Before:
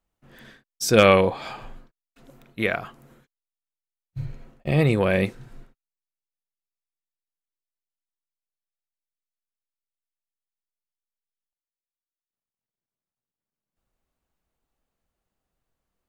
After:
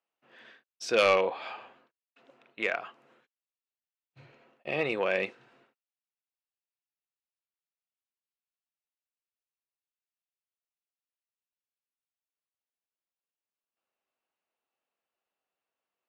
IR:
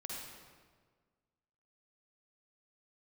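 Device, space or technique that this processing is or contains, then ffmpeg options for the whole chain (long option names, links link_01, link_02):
intercom: -filter_complex "[0:a]highpass=450,lowpass=3900,equalizer=frequency=2700:width_type=o:width=0.22:gain=7,asoftclip=type=tanh:threshold=-10dB,asettb=1/sr,asplit=3[link_01][link_02][link_03];[link_01]atrim=end=1.094[link_04];[link_02]atrim=start=1.09:end=2.79,asetpts=PTS-STARTPTS,afade=type=in:duration=0.004:curve=qsin,afade=type=out:start_time=1.696:duration=0.004:curve=qsin,highshelf=frequency=8200:gain=-6[link_05];[link_03]atrim=start=2.786[link_06];[link_04][link_05]acrossfade=duration=0.004:curve1=hsin:curve2=qsin[link_07];[link_07][link_06]acrossfade=duration=0.004:curve1=qsin:curve2=hsin,volume=-4dB"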